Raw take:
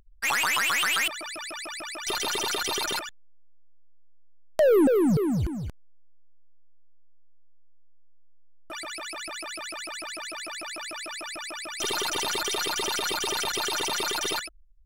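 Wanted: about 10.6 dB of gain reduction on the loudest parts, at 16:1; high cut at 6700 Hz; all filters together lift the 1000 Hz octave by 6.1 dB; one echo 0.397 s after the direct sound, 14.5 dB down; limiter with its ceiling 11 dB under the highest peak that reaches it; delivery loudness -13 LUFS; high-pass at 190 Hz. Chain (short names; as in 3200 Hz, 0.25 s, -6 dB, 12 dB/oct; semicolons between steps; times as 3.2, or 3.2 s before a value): HPF 190 Hz; LPF 6700 Hz; bell 1000 Hz +7.5 dB; compressor 16:1, threshold -27 dBFS; limiter -25 dBFS; echo 0.397 s -14.5 dB; gain +20 dB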